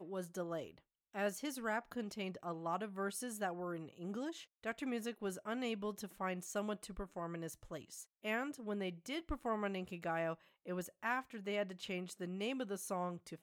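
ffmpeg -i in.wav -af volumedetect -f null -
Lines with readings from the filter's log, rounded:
mean_volume: -42.3 dB
max_volume: -23.8 dB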